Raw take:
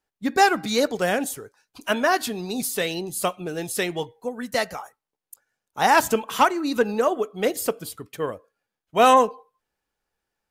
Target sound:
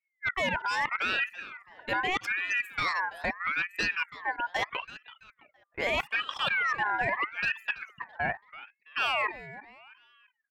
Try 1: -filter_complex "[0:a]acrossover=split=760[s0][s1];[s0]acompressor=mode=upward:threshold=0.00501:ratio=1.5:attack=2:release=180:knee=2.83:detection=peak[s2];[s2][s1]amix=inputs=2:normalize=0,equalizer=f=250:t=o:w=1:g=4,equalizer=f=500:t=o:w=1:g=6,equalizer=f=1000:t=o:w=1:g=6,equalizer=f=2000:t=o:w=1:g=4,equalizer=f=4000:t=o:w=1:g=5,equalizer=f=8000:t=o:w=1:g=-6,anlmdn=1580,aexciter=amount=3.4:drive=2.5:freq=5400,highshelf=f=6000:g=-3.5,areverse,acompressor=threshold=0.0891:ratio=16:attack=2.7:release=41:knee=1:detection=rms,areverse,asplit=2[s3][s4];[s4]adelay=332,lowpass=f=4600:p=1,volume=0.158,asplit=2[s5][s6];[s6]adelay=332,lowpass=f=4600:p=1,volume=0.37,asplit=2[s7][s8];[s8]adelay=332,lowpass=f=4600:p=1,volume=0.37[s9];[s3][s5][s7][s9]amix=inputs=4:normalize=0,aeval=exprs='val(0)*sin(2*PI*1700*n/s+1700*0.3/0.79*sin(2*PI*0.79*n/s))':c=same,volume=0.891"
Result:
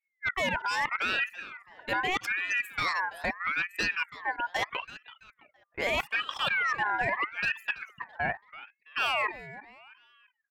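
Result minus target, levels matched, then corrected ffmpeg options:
8 kHz band +2.5 dB
-filter_complex "[0:a]acrossover=split=760[s0][s1];[s0]acompressor=mode=upward:threshold=0.00501:ratio=1.5:attack=2:release=180:knee=2.83:detection=peak[s2];[s2][s1]amix=inputs=2:normalize=0,equalizer=f=250:t=o:w=1:g=4,equalizer=f=500:t=o:w=1:g=6,equalizer=f=1000:t=o:w=1:g=6,equalizer=f=2000:t=o:w=1:g=4,equalizer=f=4000:t=o:w=1:g=5,equalizer=f=8000:t=o:w=1:g=-6,anlmdn=1580,aexciter=amount=3.4:drive=2.5:freq=5400,highshelf=f=6000:g=-11,areverse,acompressor=threshold=0.0891:ratio=16:attack=2.7:release=41:knee=1:detection=rms,areverse,asplit=2[s3][s4];[s4]adelay=332,lowpass=f=4600:p=1,volume=0.158,asplit=2[s5][s6];[s6]adelay=332,lowpass=f=4600:p=1,volume=0.37,asplit=2[s7][s8];[s8]adelay=332,lowpass=f=4600:p=1,volume=0.37[s9];[s3][s5][s7][s9]amix=inputs=4:normalize=0,aeval=exprs='val(0)*sin(2*PI*1700*n/s+1700*0.3/0.79*sin(2*PI*0.79*n/s))':c=same,volume=0.891"

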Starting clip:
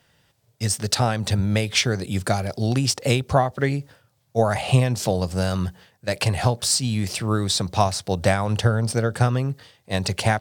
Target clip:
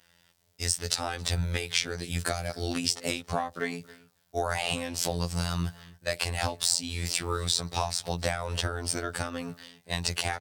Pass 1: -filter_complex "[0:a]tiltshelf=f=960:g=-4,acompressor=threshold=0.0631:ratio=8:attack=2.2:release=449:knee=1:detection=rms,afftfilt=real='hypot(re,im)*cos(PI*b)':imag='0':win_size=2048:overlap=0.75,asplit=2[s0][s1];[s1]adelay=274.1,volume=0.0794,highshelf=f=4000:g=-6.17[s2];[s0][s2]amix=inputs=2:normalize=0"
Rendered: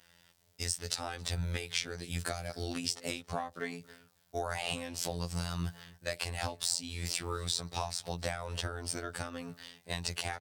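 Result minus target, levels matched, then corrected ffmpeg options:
compression: peak gain reduction +6.5 dB
-filter_complex "[0:a]tiltshelf=f=960:g=-4,acompressor=threshold=0.15:ratio=8:attack=2.2:release=449:knee=1:detection=rms,afftfilt=real='hypot(re,im)*cos(PI*b)':imag='0':win_size=2048:overlap=0.75,asplit=2[s0][s1];[s1]adelay=274.1,volume=0.0794,highshelf=f=4000:g=-6.17[s2];[s0][s2]amix=inputs=2:normalize=0"

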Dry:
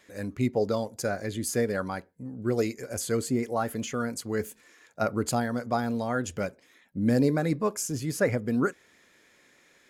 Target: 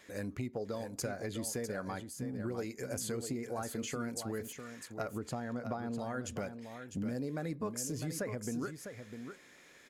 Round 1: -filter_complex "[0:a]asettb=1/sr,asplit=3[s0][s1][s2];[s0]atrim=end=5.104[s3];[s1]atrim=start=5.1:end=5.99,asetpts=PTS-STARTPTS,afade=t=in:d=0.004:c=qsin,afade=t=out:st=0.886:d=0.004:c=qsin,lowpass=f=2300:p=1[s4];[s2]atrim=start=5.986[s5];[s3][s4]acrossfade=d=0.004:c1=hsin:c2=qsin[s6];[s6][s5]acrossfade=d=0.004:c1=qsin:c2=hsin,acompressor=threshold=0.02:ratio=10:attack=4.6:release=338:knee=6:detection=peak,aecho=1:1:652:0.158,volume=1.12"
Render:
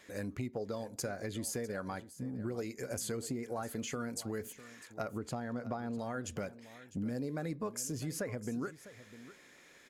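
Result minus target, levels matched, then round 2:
echo-to-direct -7.5 dB
-filter_complex "[0:a]asettb=1/sr,asplit=3[s0][s1][s2];[s0]atrim=end=5.104[s3];[s1]atrim=start=5.1:end=5.99,asetpts=PTS-STARTPTS,afade=t=in:d=0.004:c=qsin,afade=t=out:st=0.886:d=0.004:c=qsin,lowpass=f=2300:p=1[s4];[s2]atrim=start=5.986[s5];[s3][s4]acrossfade=d=0.004:c1=hsin:c2=qsin[s6];[s6][s5]acrossfade=d=0.004:c1=qsin:c2=hsin,acompressor=threshold=0.02:ratio=10:attack=4.6:release=338:knee=6:detection=peak,aecho=1:1:652:0.376,volume=1.12"

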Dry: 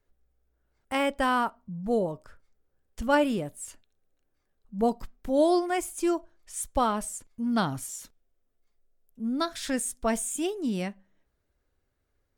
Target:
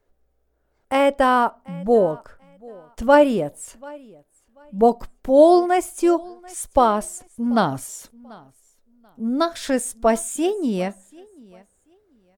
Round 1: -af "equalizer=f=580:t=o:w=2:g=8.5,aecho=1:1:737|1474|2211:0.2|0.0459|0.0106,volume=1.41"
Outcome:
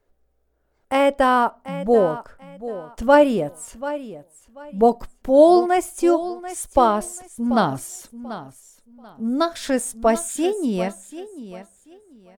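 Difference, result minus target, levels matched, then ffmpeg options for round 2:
echo-to-direct +10 dB
-af "equalizer=f=580:t=o:w=2:g=8.5,aecho=1:1:737|1474:0.0631|0.0145,volume=1.41"

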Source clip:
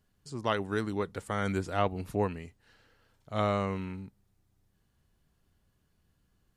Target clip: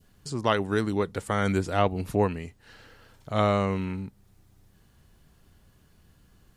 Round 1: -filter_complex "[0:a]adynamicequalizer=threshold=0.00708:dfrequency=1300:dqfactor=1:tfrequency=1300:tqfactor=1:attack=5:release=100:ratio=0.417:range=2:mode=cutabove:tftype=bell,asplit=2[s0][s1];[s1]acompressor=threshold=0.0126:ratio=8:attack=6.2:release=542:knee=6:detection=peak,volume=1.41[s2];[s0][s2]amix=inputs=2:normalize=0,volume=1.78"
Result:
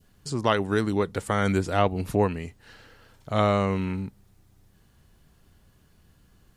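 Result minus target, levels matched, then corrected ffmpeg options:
compression: peak gain reduction -9 dB
-filter_complex "[0:a]adynamicequalizer=threshold=0.00708:dfrequency=1300:dqfactor=1:tfrequency=1300:tqfactor=1:attack=5:release=100:ratio=0.417:range=2:mode=cutabove:tftype=bell,asplit=2[s0][s1];[s1]acompressor=threshold=0.00376:ratio=8:attack=6.2:release=542:knee=6:detection=peak,volume=1.41[s2];[s0][s2]amix=inputs=2:normalize=0,volume=1.78"

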